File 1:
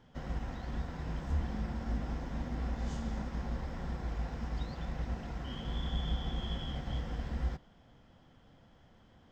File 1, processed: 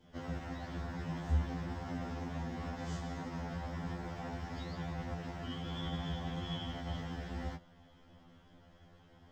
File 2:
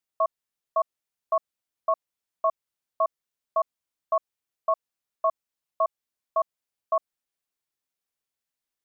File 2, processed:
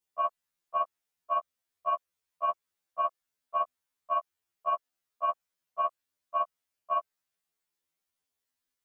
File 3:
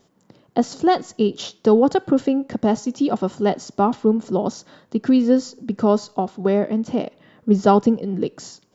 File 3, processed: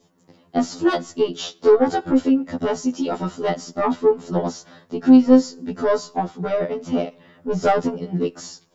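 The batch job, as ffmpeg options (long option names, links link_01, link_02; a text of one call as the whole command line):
ffmpeg -i in.wav -af "acontrast=87,adynamicequalizer=threshold=0.0282:dfrequency=1500:dqfactor=1.5:tfrequency=1500:tqfactor=1.5:attack=5:release=100:ratio=0.375:range=1.5:mode=boostabove:tftype=bell,afftfilt=real='re*2*eq(mod(b,4),0)':imag='im*2*eq(mod(b,4),0)':win_size=2048:overlap=0.75,volume=-4dB" out.wav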